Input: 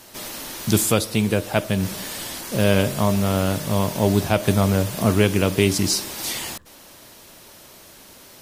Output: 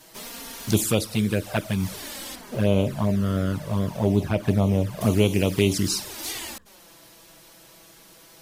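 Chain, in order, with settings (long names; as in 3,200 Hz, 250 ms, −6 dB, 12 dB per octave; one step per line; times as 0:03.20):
0:02.35–0:05.01: high-shelf EQ 2,700 Hz −11 dB
flanger swept by the level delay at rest 6.8 ms, full sweep at −13.5 dBFS
level −1.5 dB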